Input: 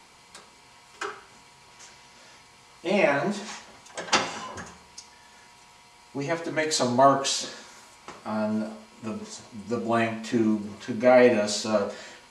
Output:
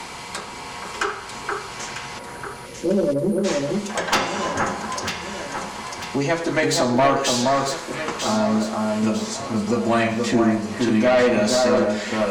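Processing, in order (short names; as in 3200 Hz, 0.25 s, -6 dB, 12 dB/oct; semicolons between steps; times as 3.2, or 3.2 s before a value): spectral delete 2.19–3.44, 600–8900 Hz; in parallel at +1.5 dB: compressor, threshold -40 dBFS, peak gain reduction 24.5 dB; on the sum: tube stage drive 17 dB, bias 0.25; on a send: echo with dull and thin repeats by turns 0.473 s, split 1800 Hz, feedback 58%, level -3.5 dB; on the sum: three-band squash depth 40%; gain +6 dB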